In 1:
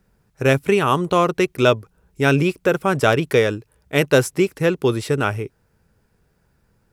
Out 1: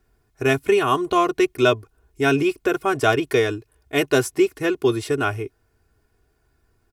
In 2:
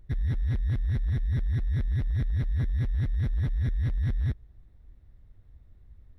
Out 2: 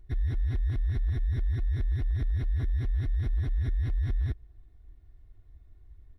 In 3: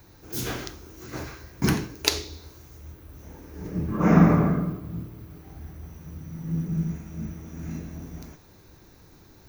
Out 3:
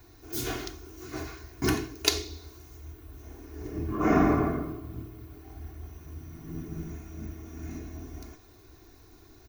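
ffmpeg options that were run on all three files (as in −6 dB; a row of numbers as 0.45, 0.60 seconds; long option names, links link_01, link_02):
-af "aecho=1:1:2.8:0.82,volume=-4dB"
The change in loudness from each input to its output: −2.0, −1.5, −5.0 LU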